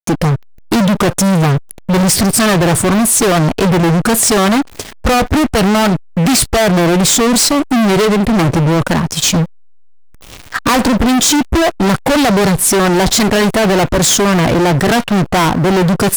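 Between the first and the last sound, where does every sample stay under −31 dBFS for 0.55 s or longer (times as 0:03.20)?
0:09.45–0:10.22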